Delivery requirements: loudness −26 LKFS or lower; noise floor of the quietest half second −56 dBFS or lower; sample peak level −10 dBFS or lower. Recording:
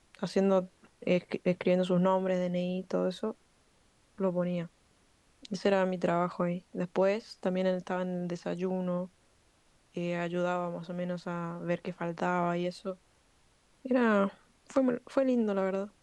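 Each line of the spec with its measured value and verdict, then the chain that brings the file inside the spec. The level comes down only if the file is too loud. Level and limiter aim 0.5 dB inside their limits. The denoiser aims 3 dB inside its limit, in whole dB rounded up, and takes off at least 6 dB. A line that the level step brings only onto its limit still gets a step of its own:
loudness −31.5 LKFS: in spec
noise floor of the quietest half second −67 dBFS: in spec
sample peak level −14.0 dBFS: in spec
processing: no processing needed

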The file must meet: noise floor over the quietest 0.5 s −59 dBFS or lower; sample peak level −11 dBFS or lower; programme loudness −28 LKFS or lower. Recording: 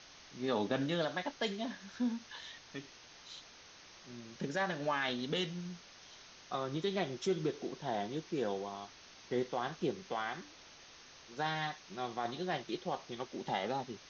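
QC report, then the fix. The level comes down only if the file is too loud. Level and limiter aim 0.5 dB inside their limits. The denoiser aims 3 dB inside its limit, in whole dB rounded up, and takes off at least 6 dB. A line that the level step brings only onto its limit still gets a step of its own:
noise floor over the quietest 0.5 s −57 dBFS: out of spec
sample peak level −20.5 dBFS: in spec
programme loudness −38.0 LKFS: in spec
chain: broadband denoise 6 dB, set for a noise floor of −57 dBFS

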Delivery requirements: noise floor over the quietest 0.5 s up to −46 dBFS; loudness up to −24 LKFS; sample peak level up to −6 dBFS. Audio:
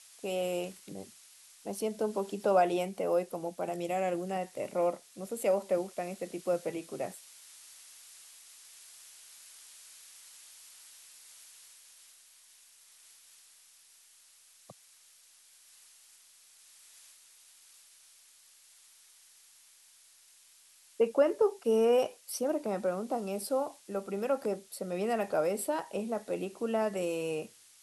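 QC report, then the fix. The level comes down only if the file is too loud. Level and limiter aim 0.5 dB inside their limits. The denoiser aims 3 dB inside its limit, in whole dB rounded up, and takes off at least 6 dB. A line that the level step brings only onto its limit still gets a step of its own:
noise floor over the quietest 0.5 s −61 dBFS: in spec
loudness −32.5 LKFS: in spec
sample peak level −15.0 dBFS: in spec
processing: no processing needed

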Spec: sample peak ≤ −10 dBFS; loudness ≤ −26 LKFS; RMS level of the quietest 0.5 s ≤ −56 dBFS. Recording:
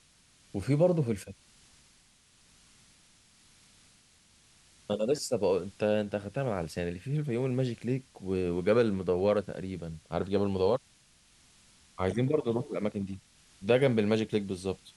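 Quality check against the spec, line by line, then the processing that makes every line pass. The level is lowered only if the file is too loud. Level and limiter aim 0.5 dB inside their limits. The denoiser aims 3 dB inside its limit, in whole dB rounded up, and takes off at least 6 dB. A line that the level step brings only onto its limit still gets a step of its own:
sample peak −11.0 dBFS: in spec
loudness −30.5 LKFS: in spec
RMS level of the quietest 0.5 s −63 dBFS: in spec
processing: no processing needed

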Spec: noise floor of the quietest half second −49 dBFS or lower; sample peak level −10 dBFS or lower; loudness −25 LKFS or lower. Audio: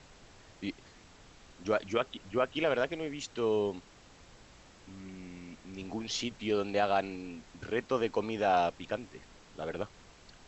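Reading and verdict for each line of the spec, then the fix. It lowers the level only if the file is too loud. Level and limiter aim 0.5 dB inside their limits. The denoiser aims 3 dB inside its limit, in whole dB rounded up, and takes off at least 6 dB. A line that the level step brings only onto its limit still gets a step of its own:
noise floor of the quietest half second −56 dBFS: in spec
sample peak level −14.5 dBFS: in spec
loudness −33.0 LKFS: in spec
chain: no processing needed

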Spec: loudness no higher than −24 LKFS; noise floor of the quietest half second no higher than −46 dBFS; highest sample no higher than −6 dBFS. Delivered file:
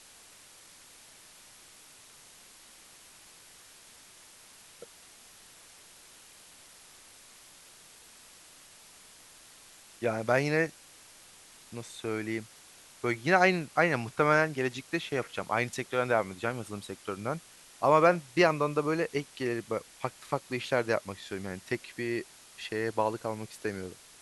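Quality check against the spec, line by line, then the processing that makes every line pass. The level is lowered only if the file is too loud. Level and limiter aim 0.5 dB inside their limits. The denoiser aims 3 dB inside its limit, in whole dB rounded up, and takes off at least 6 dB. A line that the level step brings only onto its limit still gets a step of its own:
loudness −30.0 LKFS: in spec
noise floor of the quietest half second −55 dBFS: in spec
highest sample −8.0 dBFS: in spec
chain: no processing needed

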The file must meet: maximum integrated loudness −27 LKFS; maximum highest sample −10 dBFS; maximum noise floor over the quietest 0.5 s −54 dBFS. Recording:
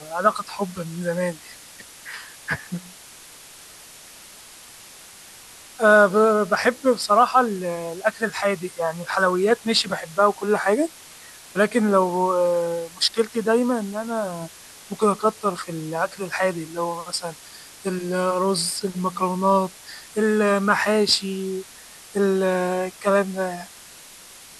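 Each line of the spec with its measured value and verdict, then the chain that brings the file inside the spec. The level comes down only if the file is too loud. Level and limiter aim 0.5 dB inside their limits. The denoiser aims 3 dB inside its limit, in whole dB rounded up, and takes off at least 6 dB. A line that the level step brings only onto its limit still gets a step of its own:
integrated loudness −22.0 LKFS: out of spec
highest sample −4.0 dBFS: out of spec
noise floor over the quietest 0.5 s −45 dBFS: out of spec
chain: broadband denoise 7 dB, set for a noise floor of −45 dBFS
level −5.5 dB
brickwall limiter −10.5 dBFS

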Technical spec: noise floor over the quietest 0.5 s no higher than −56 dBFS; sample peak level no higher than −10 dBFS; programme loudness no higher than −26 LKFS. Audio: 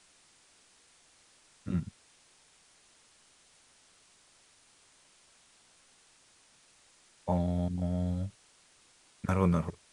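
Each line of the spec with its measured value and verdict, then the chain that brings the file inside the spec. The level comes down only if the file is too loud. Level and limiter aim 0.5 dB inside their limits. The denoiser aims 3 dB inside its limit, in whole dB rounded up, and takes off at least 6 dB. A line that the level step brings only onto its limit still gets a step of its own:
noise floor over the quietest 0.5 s −64 dBFS: in spec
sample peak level −13.0 dBFS: in spec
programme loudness −32.5 LKFS: in spec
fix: no processing needed

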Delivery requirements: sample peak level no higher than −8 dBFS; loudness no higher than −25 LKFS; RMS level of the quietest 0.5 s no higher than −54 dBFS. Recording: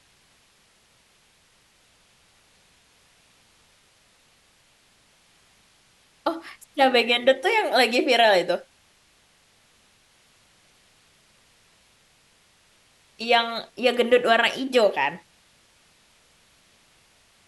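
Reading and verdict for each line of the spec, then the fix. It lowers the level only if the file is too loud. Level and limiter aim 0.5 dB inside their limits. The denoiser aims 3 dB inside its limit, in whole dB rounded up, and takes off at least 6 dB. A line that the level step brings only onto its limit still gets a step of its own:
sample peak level −5.5 dBFS: out of spec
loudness −21.0 LKFS: out of spec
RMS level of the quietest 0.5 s −61 dBFS: in spec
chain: level −4.5 dB

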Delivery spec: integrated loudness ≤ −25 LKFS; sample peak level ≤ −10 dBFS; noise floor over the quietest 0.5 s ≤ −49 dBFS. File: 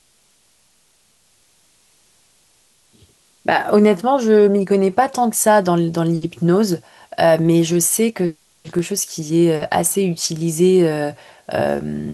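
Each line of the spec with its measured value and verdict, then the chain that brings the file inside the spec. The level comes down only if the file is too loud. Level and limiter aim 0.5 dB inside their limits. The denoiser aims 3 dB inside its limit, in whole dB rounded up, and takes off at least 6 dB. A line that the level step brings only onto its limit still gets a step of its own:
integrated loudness −17.0 LKFS: out of spec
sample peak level −3.5 dBFS: out of spec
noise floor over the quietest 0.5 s −58 dBFS: in spec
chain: level −8.5 dB

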